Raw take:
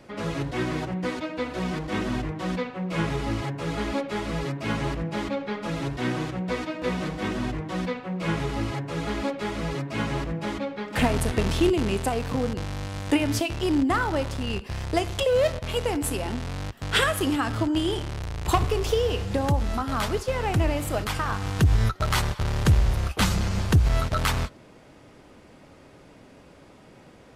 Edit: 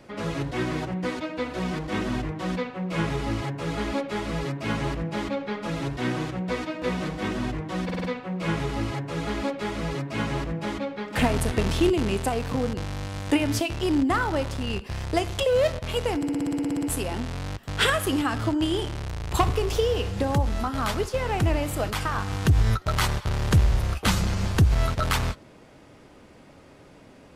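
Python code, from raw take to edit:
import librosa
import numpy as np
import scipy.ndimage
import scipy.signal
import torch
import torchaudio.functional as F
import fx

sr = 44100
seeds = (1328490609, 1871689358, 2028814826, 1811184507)

y = fx.edit(x, sr, fx.stutter(start_s=7.84, slice_s=0.05, count=5),
    fx.stutter(start_s=15.97, slice_s=0.06, count=12), tone=tone)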